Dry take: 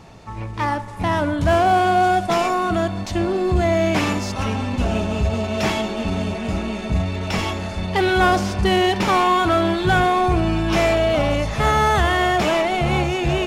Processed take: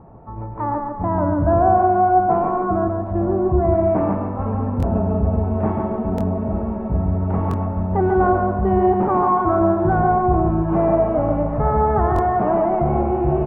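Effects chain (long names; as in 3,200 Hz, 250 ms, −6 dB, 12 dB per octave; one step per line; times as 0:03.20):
low-pass filter 1,100 Hz 24 dB per octave
repeating echo 142 ms, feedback 38%, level −4 dB
buffer that repeats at 0:04.78/0:06.16/0:07.49/0:12.14, samples 1,024, times 1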